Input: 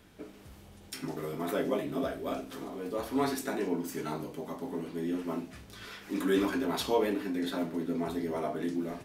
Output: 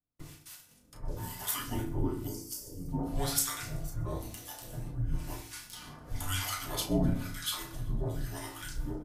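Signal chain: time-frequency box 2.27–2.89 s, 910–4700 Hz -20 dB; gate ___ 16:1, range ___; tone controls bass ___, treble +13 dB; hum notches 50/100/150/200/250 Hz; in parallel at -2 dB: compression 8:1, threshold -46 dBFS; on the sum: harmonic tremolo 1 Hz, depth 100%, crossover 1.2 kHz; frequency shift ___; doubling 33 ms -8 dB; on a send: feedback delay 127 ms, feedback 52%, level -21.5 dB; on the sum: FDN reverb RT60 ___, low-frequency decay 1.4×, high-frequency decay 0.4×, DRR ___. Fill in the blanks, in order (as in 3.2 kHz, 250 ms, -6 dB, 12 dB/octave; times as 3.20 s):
-50 dBFS, -38 dB, -4 dB, -290 Hz, 0.56 s, 4.5 dB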